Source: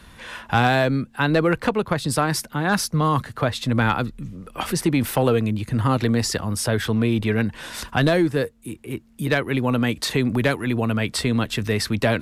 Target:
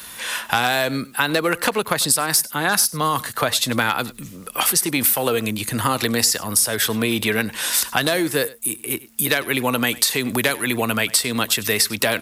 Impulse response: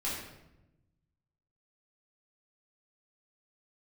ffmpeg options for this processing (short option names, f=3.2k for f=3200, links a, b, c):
-af "aemphasis=mode=production:type=riaa,acompressor=threshold=-22dB:ratio=6,aecho=1:1:98:0.1,volume=6.5dB"